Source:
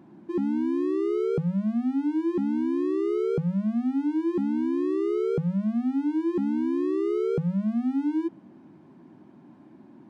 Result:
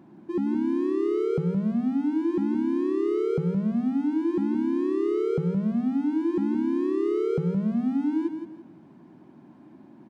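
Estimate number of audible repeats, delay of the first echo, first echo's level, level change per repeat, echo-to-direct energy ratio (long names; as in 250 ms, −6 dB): 3, 169 ms, −8.0 dB, −10.5 dB, −7.5 dB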